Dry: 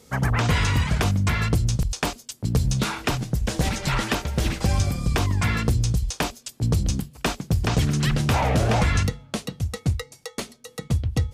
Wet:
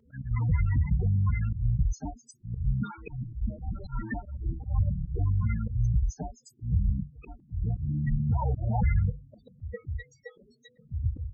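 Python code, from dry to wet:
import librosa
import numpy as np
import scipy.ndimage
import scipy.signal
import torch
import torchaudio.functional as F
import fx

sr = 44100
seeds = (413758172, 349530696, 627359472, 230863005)

y = fx.spec_topn(x, sr, count=8)
y = fx.auto_swell(y, sr, attack_ms=147.0)
y = fx.comb_cascade(y, sr, direction='falling', hz=1.5)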